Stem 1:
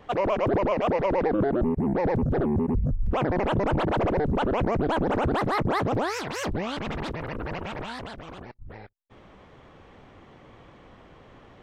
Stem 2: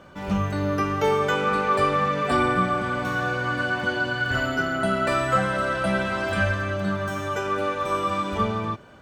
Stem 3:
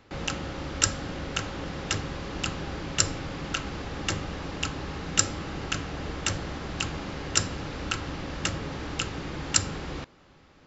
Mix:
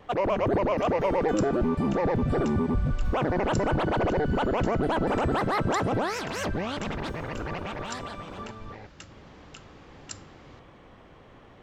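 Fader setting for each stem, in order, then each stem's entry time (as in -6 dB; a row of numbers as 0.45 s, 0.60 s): -1.0 dB, -17.0 dB, -17.5 dB; 0.00 s, 0.00 s, 0.55 s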